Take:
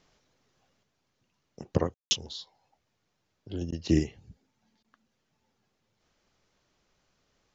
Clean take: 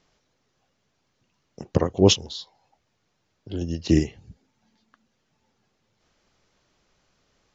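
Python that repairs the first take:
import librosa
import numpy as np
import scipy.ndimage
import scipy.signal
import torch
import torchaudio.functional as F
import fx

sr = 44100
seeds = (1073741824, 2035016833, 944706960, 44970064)

y = fx.fix_ambience(x, sr, seeds[0], print_start_s=2.81, print_end_s=3.31, start_s=1.94, end_s=2.11)
y = fx.fix_interpolate(y, sr, at_s=(3.71, 4.83), length_ms=12.0)
y = fx.gain(y, sr, db=fx.steps((0.0, 0.0), (0.83, 5.0)))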